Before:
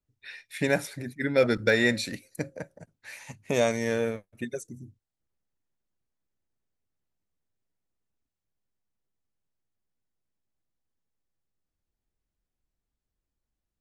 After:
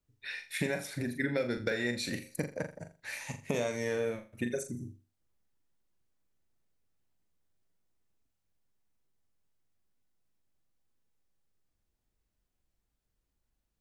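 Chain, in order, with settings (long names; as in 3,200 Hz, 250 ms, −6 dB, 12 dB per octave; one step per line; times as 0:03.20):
downward compressor 16 to 1, threshold −31 dBFS, peak gain reduction 15.5 dB
on a send: flutter between parallel walls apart 7.1 metres, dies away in 0.32 s
on the sum: level +2.5 dB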